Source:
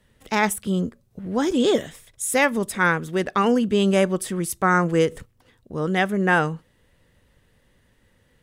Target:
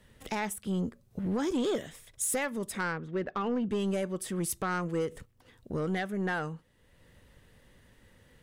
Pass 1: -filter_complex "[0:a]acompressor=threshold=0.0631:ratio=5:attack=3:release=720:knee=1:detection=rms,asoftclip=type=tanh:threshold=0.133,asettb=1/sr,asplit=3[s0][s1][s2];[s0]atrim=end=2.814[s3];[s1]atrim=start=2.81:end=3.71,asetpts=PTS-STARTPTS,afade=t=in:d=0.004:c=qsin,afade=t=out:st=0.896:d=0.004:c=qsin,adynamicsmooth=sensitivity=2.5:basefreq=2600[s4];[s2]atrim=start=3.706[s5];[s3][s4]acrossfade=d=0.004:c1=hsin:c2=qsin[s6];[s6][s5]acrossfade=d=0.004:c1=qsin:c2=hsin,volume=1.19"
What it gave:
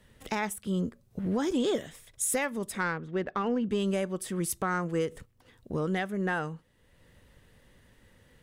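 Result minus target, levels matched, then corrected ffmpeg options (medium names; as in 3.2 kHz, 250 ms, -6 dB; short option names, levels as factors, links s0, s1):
saturation: distortion -11 dB
-filter_complex "[0:a]acompressor=threshold=0.0631:ratio=5:attack=3:release=720:knee=1:detection=rms,asoftclip=type=tanh:threshold=0.0562,asettb=1/sr,asplit=3[s0][s1][s2];[s0]atrim=end=2.814[s3];[s1]atrim=start=2.81:end=3.71,asetpts=PTS-STARTPTS,afade=t=in:d=0.004:c=qsin,afade=t=out:st=0.896:d=0.004:c=qsin,adynamicsmooth=sensitivity=2.5:basefreq=2600[s4];[s2]atrim=start=3.706[s5];[s3][s4]acrossfade=d=0.004:c1=hsin:c2=qsin[s6];[s6][s5]acrossfade=d=0.004:c1=qsin:c2=hsin,volume=1.19"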